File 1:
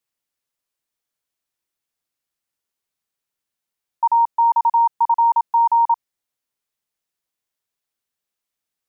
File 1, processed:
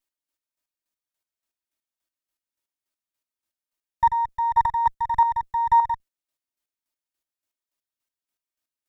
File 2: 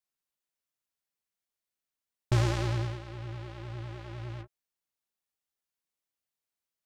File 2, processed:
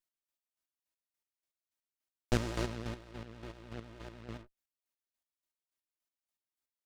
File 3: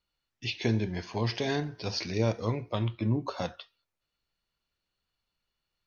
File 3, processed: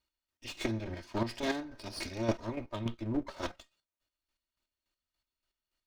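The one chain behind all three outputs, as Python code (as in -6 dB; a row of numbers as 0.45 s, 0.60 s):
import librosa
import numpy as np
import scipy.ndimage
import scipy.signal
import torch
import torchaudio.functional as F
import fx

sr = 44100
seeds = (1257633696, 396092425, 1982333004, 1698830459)

y = fx.lower_of_two(x, sr, delay_ms=3.2)
y = fx.chopper(y, sr, hz=3.5, depth_pct=60, duty_pct=30)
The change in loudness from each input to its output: -5.0 LU, -7.0 LU, -5.5 LU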